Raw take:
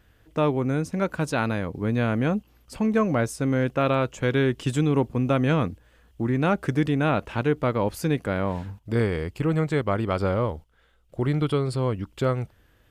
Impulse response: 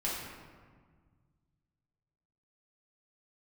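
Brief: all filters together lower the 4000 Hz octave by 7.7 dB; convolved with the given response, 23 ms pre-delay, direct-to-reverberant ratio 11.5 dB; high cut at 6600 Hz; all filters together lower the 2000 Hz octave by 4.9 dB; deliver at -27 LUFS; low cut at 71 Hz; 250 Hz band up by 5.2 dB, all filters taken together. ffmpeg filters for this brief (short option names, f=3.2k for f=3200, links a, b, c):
-filter_complex "[0:a]highpass=71,lowpass=6.6k,equalizer=f=250:t=o:g=6.5,equalizer=f=2k:t=o:g=-5.5,equalizer=f=4k:t=o:g=-7.5,asplit=2[a][b];[1:a]atrim=start_sample=2205,adelay=23[c];[b][c]afir=irnorm=-1:irlink=0,volume=-17dB[d];[a][d]amix=inputs=2:normalize=0,volume=-5dB"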